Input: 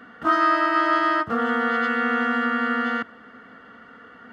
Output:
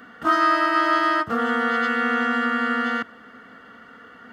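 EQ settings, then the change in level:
high-shelf EQ 5,100 Hz +10 dB
0.0 dB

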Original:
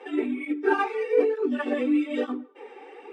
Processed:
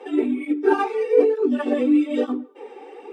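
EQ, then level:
parametric band 1,900 Hz −8 dB 1.6 octaves
+6.0 dB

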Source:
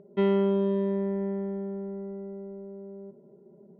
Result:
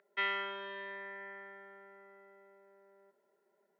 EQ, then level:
high-pass with resonance 1,700 Hz, resonance Q 2.7
+2.5 dB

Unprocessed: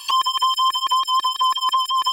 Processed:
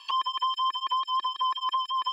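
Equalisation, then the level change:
three-way crossover with the lows and the highs turned down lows −18 dB, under 240 Hz, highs −20 dB, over 5,000 Hz
high-shelf EQ 6,100 Hz −7 dB
−8.0 dB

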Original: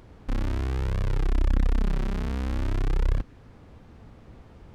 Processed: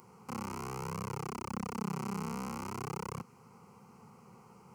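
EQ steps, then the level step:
high-pass filter 190 Hz 24 dB per octave
phaser with its sweep stopped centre 710 Hz, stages 4
phaser with its sweep stopped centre 1,500 Hz, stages 4
+8.0 dB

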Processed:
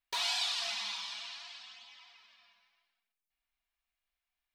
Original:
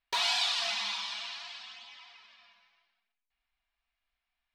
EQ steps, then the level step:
high-shelf EQ 5,900 Hz +8 dB
−6.0 dB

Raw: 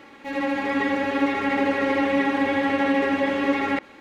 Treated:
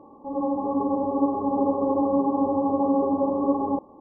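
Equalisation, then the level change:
linear-phase brick-wall low-pass 1,200 Hz
0.0 dB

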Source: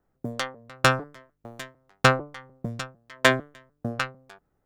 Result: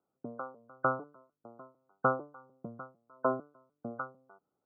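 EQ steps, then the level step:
high-pass filter 210 Hz 12 dB per octave
linear-phase brick-wall low-pass 1,500 Hz
−7.5 dB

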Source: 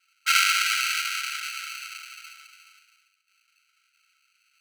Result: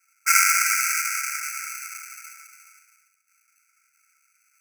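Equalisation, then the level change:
Chebyshev band-stop filter 2,300–5,200 Hz, order 3
high-shelf EQ 4,000 Hz +7.5 dB
+3.0 dB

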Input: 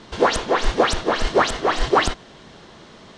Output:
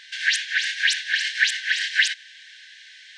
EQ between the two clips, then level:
linear-phase brick-wall high-pass 1,500 Hz
high-shelf EQ 4,200 Hz −9 dB
+8.0 dB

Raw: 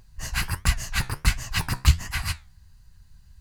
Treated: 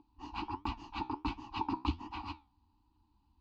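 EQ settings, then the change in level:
formant filter u
low-pass filter 4,400 Hz 24 dB per octave
phaser with its sweep stopped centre 570 Hz, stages 6
+12.0 dB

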